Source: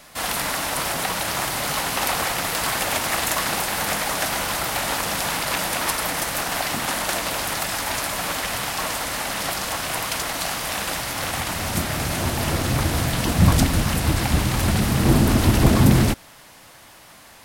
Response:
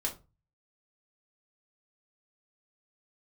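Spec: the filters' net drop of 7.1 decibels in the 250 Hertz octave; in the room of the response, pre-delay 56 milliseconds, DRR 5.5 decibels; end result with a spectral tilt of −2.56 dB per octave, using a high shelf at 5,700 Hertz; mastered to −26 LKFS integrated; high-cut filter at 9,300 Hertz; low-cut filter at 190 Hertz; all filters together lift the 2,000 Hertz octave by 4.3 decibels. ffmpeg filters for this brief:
-filter_complex "[0:a]highpass=190,lowpass=9300,equalizer=frequency=250:width_type=o:gain=-7,equalizer=frequency=2000:width_type=o:gain=4.5,highshelf=frequency=5700:gain=7,asplit=2[link_01][link_02];[1:a]atrim=start_sample=2205,adelay=56[link_03];[link_02][link_03]afir=irnorm=-1:irlink=0,volume=-9dB[link_04];[link_01][link_04]amix=inputs=2:normalize=0,volume=-5.5dB"

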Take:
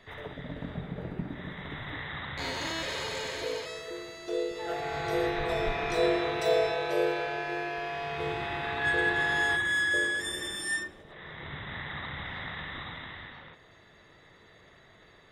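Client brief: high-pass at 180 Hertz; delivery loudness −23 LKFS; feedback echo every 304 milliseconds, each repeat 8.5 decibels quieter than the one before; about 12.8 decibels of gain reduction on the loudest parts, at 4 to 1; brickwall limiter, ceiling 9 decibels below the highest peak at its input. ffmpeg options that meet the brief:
ffmpeg -i in.wav -af "highpass=180,acompressor=threshold=-37dB:ratio=4,alimiter=level_in=12dB:limit=-24dB:level=0:latency=1,volume=-12dB,aecho=1:1:304|608|912|1216:0.376|0.143|0.0543|0.0206,volume=20dB" out.wav

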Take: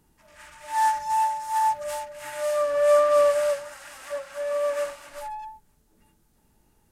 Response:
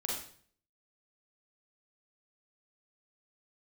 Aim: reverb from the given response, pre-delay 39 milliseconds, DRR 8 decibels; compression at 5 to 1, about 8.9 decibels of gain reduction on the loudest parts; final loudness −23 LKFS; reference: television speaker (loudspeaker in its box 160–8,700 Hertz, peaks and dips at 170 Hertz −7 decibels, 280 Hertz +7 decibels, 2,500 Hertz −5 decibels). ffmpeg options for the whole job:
-filter_complex "[0:a]acompressor=threshold=-25dB:ratio=5,asplit=2[link_01][link_02];[1:a]atrim=start_sample=2205,adelay=39[link_03];[link_02][link_03]afir=irnorm=-1:irlink=0,volume=-11.5dB[link_04];[link_01][link_04]amix=inputs=2:normalize=0,highpass=frequency=160:width=0.5412,highpass=frequency=160:width=1.3066,equalizer=frequency=170:width_type=q:width=4:gain=-7,equalizer=frequency=280:width_type=q:width=4:gain=7,equalizer=frequency=2500:width_type=q:width=4:gain=-5,lowpass=frequency=8700:width=0.5412,lowpass=frequency=8700:width=1.3066,volume=6dB"

